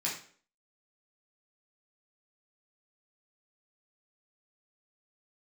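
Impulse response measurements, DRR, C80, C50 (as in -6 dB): -5.5 dB, 10.5 dB, 5.5 dB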